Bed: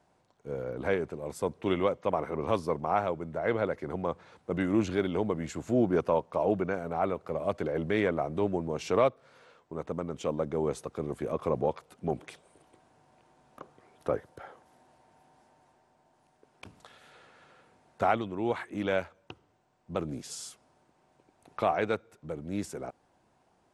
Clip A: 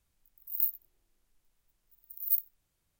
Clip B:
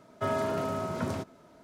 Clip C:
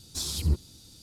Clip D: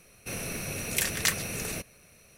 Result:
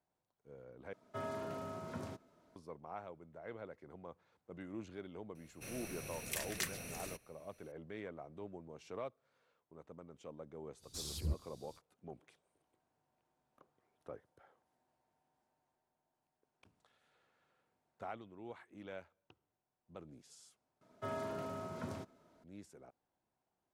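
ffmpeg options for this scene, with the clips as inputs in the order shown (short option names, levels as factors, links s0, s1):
-filter_complex "[2:a]asplit=2[s0][s1];[0:a]volume=0.106,asplit=3[s2][s3][s4];[s2]atrim=end=0.934[s5];[s0]atrim=end=1.63,asetpts=PTS-STARTPTS,volume=0.237[s6];[s3]atrim=start=2.556:end=20.814[s7];[s1]atrim=end=1.63,asetpts=PTS-STARTPTS,volume=0.266[s8];[s4]atrim=start=22.436[s9];[4:a]atrim=end=2.37,asetpts=PTS-STARTPTS,volume=0.224,afade=t=in:d=0.004:c=hsin,afade=t=out:st=2.366:d=0.004:c=hsin,adelay=5350[s10];[3:a]atrim=end=1.02,asetpts=PTS-STARTPTS,volume=0.251,afade=t=in:d=0.05,afade=t=out:st=0.97:d=0.05,adelay=10790[s11];[s5][s6]acrossfade=d=0.004:c1=hsin:c2=hsin[s12];[s12][s7]acrossfade=d=0.004:c1=hsin:c2=hsin[s13];[s13][s8]acrossfade=d=0.004:c1=hsin:c2=hsin[s14];[s14][s9]acrossfade=d=0.004:c1=hsin:c2=hsin[s15];[s15][s10][s11]amix=inputs=3:normalize=0"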